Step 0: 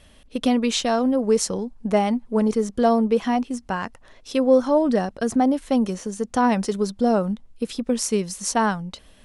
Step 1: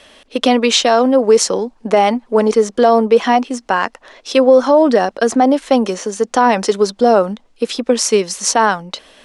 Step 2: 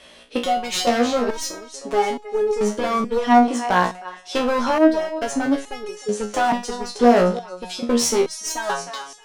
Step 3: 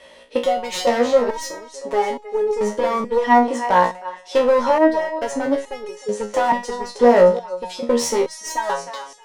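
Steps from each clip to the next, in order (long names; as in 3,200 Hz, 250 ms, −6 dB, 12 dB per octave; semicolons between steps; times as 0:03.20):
three-way crossover with the lows and the highs turned down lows −20 dB, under 290 Hz, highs −13 dB, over 7,900 Hz; boost into a limiter +13.5 dB; level −1 dB
feedback echo with a high-pass in the loop 311 ms, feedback 45%, high-pass 660 Hz, level −13 dB; asymmetric clip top −15.5 dBFS; step-sequenced resonator 2.3 Hz 60–420 Hz; level +5.5 dB
hollow resonant body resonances 540/920/1,900 Hz, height 12 dB, ringing for 30 ms; level −3.5 dB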